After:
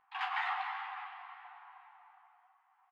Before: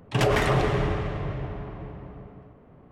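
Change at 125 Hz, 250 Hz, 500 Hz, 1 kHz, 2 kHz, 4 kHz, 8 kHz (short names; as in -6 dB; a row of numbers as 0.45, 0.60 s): under -40 dB, under -40 dB, under -30 dB, -7.0 dB, -8.0 dB, -12.0 dB, n/a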